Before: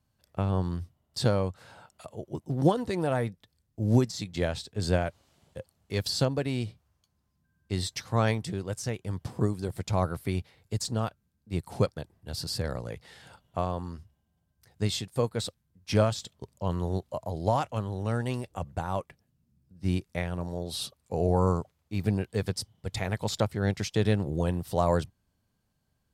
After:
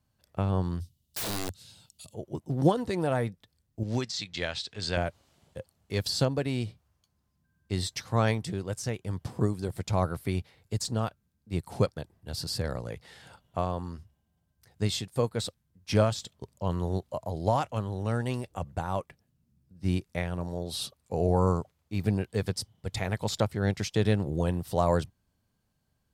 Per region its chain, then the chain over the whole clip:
0.80–2.14 s: FFT filter 100 Hz 0 dB, 210 Hz -3 dB, 650 Hz -18 dB, 1.5 kHz -18 dB, 3.8 kHz +8 dB + integer overflow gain 28 dB
3.83–4.97 s: low-pass 4.4 kHz + upward compressor, threshold -37 dBFS + tilt shelf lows -9 dB, about 1.2 kHz
whole clip: none

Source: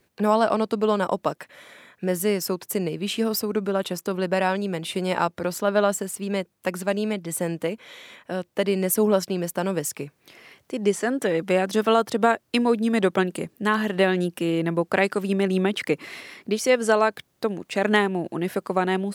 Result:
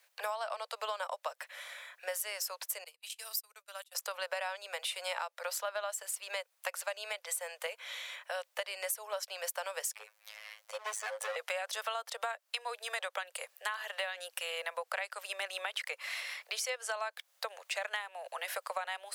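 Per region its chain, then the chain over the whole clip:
2.84–3.95 s: gate -27 dBFS, range -30 dB + pre-emphasis filter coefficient 0.9
9.93–11.36 s: bass shelf 390 Hz +6.5 dB + robot voice 107 Hz + hard clipper -23 dBFS
whole clip: steep high-pass 510 Hz 72 dB/octave; tilt shelf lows -6 dB, about 780 Hz; compression 10:1, threshold -30 dBFS; trim -3.5 dB

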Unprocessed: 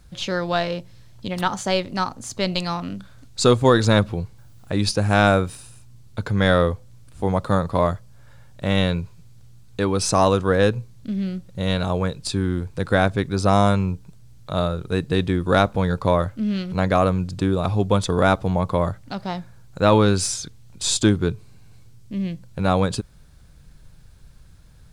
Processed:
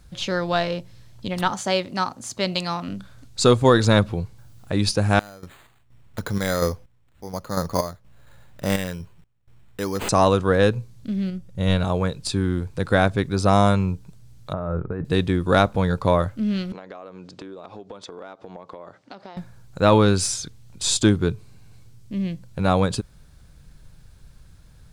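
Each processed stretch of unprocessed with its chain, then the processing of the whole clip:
1.53–2.88 s: high-pass 160 Hz 6 dB/octave + band-stop 450 Hz
5.19–10.09 s: peaking EQ 110 Hz -5.5 dB 0.63 oct + random-step tremolo 4.2 Hz, depth 95% + careless resampling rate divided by 8×, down none, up hold
11.30–11.85 s: bass shelf 130 Hz +7.5 dB + band-stop 4.1 kHz, Q 10 + upward expansion, over -27 dBFS
14.53–15.05 s: low-pass 1.7 kHz 24 dB/octave + compressor with a negative ratio -26 dBFS
16.72–19.37 s: Chebyshev band-pass 350–6000 Hz + treble shelf 3.8 kHz -7.5 dB + compression 16:1, threshold -34 dBFS
whole clip: none

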